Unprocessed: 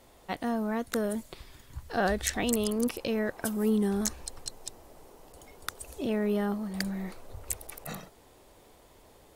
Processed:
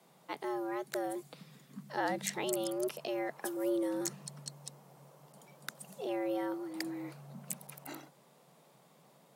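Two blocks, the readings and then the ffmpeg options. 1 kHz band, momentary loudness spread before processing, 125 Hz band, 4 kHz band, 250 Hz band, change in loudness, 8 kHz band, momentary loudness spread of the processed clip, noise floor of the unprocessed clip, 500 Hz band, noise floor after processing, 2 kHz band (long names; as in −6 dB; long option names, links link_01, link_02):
−3.5 dB, 16 LU, −11.5 dB, −6.5 dB, −8.0 dB, −6.5 dB, −6.5 dB, 16 LU, −58 dBFS, −5.0 dB, −64 dBFS, −6.5 dB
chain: -af "afreqshift=130,volume=-6.5dB"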